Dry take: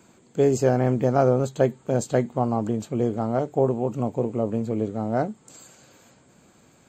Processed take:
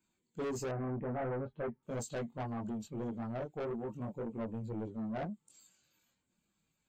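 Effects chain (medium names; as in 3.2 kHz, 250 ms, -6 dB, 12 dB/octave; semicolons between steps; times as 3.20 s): expander on every frequency bin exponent 1.5; chorus voices 6, 0.39 Hz, delay 22 ms, depth 4.2 ms; saturation -29.5 dBFS, distortion -7 dB; 0.71–1.83 s: low-pass 2 kHz 24 dB/octave; trim -4.5 dB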